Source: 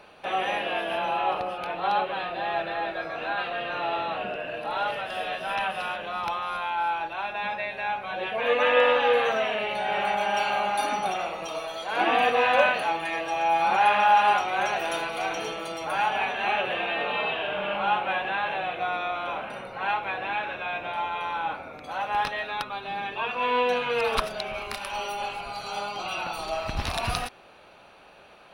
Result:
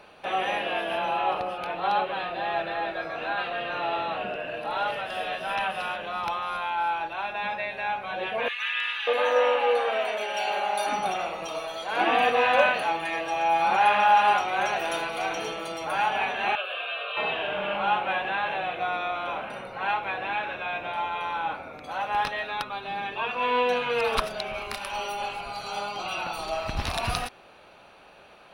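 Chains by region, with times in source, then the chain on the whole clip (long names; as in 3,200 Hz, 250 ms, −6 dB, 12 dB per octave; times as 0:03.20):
0:08.48–0:10.87: high-pass filter 360 Hz + multiband delay without the direct sound highs, lows 590 ms, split 1,600 Hz
0:16.55–0:17.17: high-pass filter 760 Hz + phaser with its sweep stopped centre 1,300 Hz, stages 8
whole clip: no processing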